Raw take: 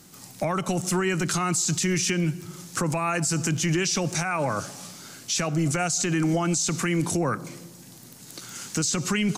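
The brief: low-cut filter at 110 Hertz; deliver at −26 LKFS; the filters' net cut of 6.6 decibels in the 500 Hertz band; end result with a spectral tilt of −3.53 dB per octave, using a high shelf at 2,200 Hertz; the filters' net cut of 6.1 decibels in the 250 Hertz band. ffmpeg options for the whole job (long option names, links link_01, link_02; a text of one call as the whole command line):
ffmpeg -i in.wav -af "highpass=110,equalizer=frequency=250:width_type=o:gain=-8,equalizer=frequency=500:width_type=o:gain=-6,highshelf=frequency=2200:gain=-4.5,volume=3.5dB" out.wav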